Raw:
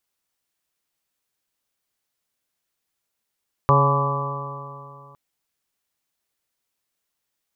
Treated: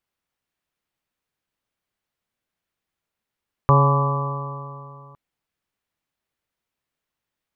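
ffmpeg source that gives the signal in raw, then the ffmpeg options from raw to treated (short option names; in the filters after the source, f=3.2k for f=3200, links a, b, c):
-f lavfi -i "aevalsrc='0.158*pow(10,-3*t/2.61)*sin(2*PI*138.1*t)+0.0316*pow(10,-3*t/2.61)*sin(2*PI*276.83*t)+0.0668*pow(10,-3*t/2.61)*sin(2*PI*416.79*t)+0.0891*pow(10,-3*t/2.61)*sin(2*PI*558.58*t)+0.0282*pow(10,-3*t/2.61)*sin(2*PI*702.82*t)+0.0668*pow(10,-3*t/2.61)*sin(2*PI*850.06*t)+0.119*pow(10,-3*t/2.61)*sin(2*PI*1000.87*t)+0.158*pow(10,-3*t/2.61)*sin(2*PI*1155.78*t)':d=1.46:s=44100"
-af "bass=f=250:g=4,treble=f=4k:g=-10"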